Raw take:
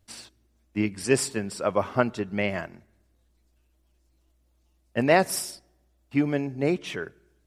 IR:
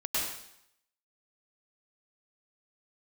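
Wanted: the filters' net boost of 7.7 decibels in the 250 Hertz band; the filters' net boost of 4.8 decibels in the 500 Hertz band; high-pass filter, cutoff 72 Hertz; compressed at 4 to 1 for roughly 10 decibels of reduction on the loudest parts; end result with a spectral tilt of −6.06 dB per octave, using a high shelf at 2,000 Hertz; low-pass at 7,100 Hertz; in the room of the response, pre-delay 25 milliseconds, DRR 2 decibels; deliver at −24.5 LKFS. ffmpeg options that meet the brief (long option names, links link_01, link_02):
-filter_complex "[0:a]highpass=72,lowpass=7100,equalizer=frequency=250:width_type=o:gain=8.5,equalizer=frequency=500:width_type=o:gain=4,highshelf=frequency=2000:gain=-4,acompressor=threshold=-22dB:ratio=4,asplit=2[link_01][link_02];[1:a]atrim=start_sample=2205,adelay=25[link_03];[link_02][link_03]afir=irnorm=-1:irlink=0,volume=-9.5dB[link_04];[link_01][link_04]amix=inputs=2:normalize=0,volume=2dB"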